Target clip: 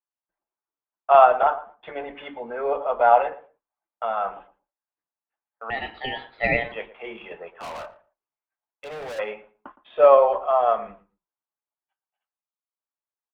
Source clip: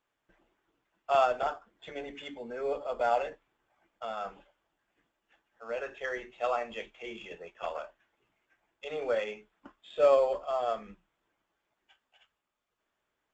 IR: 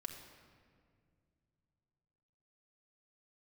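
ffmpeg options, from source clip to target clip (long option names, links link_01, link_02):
-filter_complex "[0:a]agate=range=-31dB:threshold=-57dB:ratio=16:detection=peak,lowpass=frequency=3300:width=0.5412,lowpass=frequency=3300:width=1.3066,equalizer=frequency=950:width_type=o:width=1.6:gain=13.5,asettb=1/sr,asplit=3[link_01][link_02][link_03];[link_01]atrim=end=5.704[link_04];[link_02]atrim=start=5.7:end=6.72,asetpts=PTS-STARTPTS,afade=type=in:duration=0.004:curve=qsin,afade=type=out:start_time=1.016:duration=0.004:curve=qsin,aeval=exprs='val(0)*sin(2*PI*1300*n/s)':channel_layout=same[link_05];[link_03]atrim=start=6.716[link_06];[link_04][link_05]acrossfade=duration=0.004:curve1=hsin:curve2=qsin[link_07];[link_07][link_06]acrossfade=duration=0.004:curve1=qsin:curve2=hsin,asplit=3[link_08][link_09][link_10];[link_08]afade=type=out:start_time=7.48:duration=0.02[link_11];[link_09]volume=34.5dB,asoftclip=hard,volume=-34.5dB,afade=type=in:start_time=7.48:duration=0.02,afade=type=out:start_time=9.18:duration=0.02[link_12];[link_10]afade=type=in:start_time=9.18:duration=0.02[link_13];[link_11][link_12][link_13]amix=inputs=3:normalize=0,asplit=2[link_14][link_15];[link_15]adelay=115,lowpass=frequency=1300:poles=1,volume=-15dB,asplit=2[link_16][link_17];[link_17]adelay=115,lowpass=frequency=1300:poles=1,volume=0.19[link_18];[link_14][link_16][link_18]amix=inputs=3:normalize=0,volume=1.5dB"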